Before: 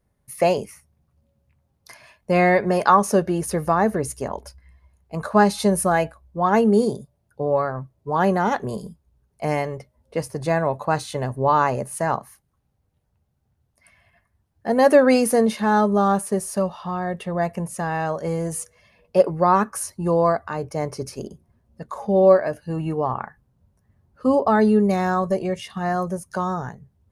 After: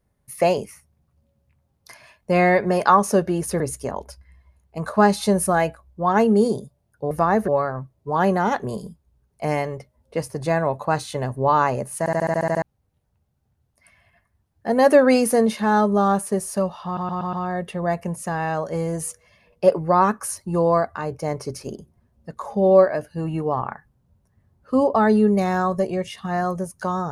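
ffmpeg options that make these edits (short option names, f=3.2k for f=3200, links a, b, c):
-filter_complex "[0:a]asplit=17[a][b][c][d][e][f][g][h][i][j][k][l][m][n][o][p][q];[a]atrim=end=3.602[r];[b]atrim=start=3.968:end=7.482[s];[c]atrim=start=3.598:end=3.972[t];[d]atrim=start=7.478:end=12.062[u];[e]atrim=start=11.988:end=12.062[v];[f]atrim=start=11.988:end=12.062[w];[g]atrim=start=11.988:end=12.062[x];[h]atrim=start=11.988:end=12.062[y];[i]atrim=start=11.988:end=12.062[z];[j]atrim=start=11.988:end=12.062[aa];[k]atrim=start=11.988:end=12.062[ab];[l]atrim=start=11.988:end=12.062[ac];[m]atrim=start=12.618:end=16.972[ad];[n]atrim=start=16.848:end=16.972[ae];[o]atrim=start=16.848:end=16.972[af];[p]atrim=start=16.848:end=16.972[ag];[q]atrim=start=16.848[ah];[r][s]acrossfade=d=0.004:c1=hsin:c2=hsin[ai];[ai][t]acrossfade=d=0.004:c1=hsin:c2=hsin[aj];[aj][u]acrossfade=d=0.004:c1=hsin:c2=hsin[ak];[ak][v]acrossfade=d=0.004:c1=hsin:c2=hsin[al];[al][w]acrossfade=d=0.004:c1=hsin:c2=hsin[am];[am][x]acrossfade=d=0.004:c1=hsin:c2=hsin[an];[an][y]acrossfade=d=0.004:c1=hsin:c2=hsin[ao];[ao][z]acrossfade=d=0.004:c1=hsin:c2=hsin[ap];[ap][aa]acrossfade=d=0.004:c1=hsin:c2=hsin[aq];[aq][ab]acrossfade=d=0.004:c1=hsin:c2=hsin[ar];[ar][ac]acrossfade=d=0.004:c1=hsin:c2=hsin[as];[as][ad]acrossfade=d=0.004:c1=hsin:c2=hsin[at];[at][ae]acrossfade=d=0.004:c1=hsin:c2=hsin[au];[au][af]acrossfade=d=0.004:c1=hsin:c2=hsin[av];[av][ag]acrossfade=d=0.004:c1=hsin:c2=hsin[aw];[aw][ah]acrossfade=d=0.004:c1=hsin:c2=hsin"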